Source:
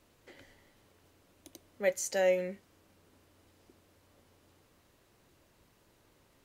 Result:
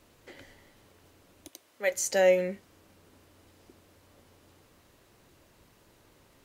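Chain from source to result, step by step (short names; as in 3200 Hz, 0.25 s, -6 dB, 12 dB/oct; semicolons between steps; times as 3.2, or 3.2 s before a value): 1.48–1.92 HPF 860 Hz 6 dB/oct; gain +5.5 dB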